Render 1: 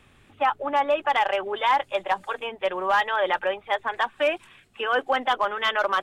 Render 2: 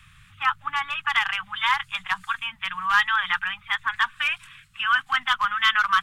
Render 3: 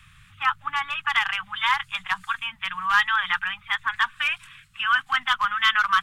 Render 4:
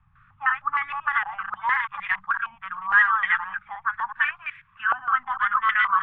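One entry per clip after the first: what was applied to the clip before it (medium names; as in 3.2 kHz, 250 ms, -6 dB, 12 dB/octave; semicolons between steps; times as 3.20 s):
elliptic band-stop 160–1200 Hz, stop band 80 dB; trim +6 dB
no audible change
chunks repeated in reverse 125 ms, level -4.5 dB; step-sequenced low-pass 6.5 Hz 790–2000 Hz; trim -7.5 dB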